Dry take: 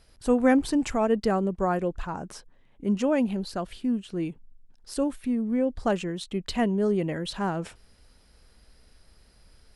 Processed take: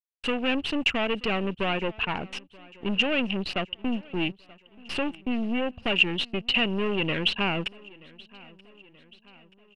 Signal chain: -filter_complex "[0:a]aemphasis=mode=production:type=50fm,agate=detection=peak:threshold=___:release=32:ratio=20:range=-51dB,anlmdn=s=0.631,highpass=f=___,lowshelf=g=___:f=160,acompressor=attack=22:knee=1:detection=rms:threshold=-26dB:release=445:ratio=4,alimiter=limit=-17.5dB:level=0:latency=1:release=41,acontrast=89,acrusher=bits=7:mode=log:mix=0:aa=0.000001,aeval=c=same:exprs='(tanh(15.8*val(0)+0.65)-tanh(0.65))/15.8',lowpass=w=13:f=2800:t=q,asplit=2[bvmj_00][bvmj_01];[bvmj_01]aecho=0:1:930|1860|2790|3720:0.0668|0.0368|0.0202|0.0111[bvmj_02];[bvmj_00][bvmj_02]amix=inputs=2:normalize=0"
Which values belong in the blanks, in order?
-42dB, 50, -7.5